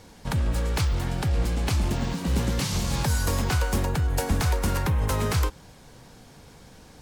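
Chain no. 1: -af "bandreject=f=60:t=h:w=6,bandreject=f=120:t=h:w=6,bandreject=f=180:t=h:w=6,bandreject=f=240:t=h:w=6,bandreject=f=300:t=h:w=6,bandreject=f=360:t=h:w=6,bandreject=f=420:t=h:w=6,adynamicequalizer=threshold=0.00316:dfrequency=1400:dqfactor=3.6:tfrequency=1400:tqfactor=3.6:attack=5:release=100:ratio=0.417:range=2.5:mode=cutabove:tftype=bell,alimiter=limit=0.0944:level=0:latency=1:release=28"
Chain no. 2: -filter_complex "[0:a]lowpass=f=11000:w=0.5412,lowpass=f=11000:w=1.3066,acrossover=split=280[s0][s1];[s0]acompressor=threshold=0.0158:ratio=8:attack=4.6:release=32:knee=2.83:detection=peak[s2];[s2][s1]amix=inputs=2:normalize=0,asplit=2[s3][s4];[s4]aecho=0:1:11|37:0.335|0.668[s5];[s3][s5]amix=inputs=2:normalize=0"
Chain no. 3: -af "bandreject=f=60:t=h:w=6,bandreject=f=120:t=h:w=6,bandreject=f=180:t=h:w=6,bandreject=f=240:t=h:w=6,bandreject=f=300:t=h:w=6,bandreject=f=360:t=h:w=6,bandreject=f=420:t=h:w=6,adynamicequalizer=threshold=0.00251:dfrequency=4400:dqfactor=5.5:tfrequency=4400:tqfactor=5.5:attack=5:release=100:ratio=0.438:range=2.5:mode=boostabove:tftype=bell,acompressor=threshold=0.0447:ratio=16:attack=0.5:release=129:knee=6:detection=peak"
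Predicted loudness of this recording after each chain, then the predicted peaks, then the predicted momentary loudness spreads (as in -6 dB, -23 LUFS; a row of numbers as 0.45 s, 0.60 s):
-30.0 LUFS, -29.5 LUFS, -34.5 LUFS; -20.5 dBFS, -13.5 dBFS, -22.0 dBFS; 3 LU, 20 LU, 16 LU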